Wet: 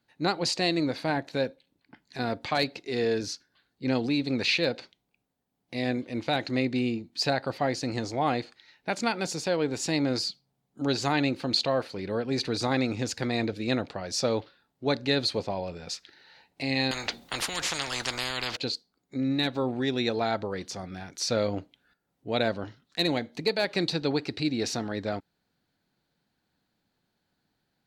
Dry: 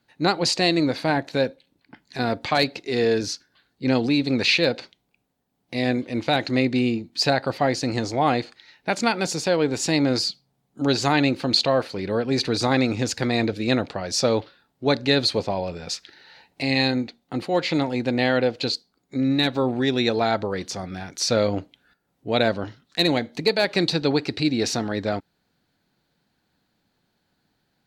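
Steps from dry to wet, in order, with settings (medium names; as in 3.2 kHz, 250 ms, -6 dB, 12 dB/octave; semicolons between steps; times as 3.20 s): 16.91–18.57 s: spectrum-flattening compressor 10:1; trim -6 dB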